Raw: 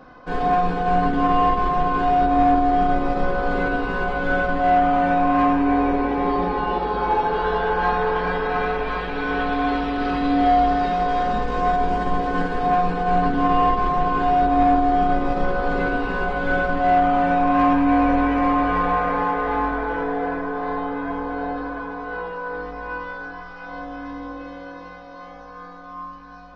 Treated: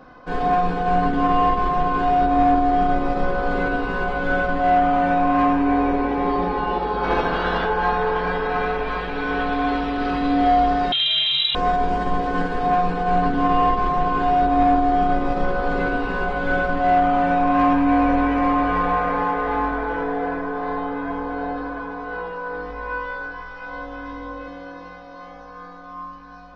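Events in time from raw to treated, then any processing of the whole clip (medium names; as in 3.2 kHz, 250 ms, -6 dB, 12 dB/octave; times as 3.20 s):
7.03–7.65 s: spectral peaks clipped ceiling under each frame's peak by 15 dB
10.92–11.55 s: frequency inversion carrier 3.9 kHz
22.68–24.48 s: doubling 20 ms -6 dB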